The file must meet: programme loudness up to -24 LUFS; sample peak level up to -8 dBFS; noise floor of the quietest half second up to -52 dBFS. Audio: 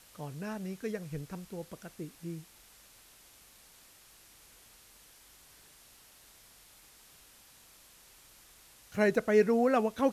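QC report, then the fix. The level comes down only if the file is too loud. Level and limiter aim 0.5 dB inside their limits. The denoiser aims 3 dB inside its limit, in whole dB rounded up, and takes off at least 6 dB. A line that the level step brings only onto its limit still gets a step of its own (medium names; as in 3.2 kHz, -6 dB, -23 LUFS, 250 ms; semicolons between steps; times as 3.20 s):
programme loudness -32.0 LUFS: pass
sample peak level -14.5 dBFS: pass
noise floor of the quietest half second -59 dBFS: pass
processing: none needed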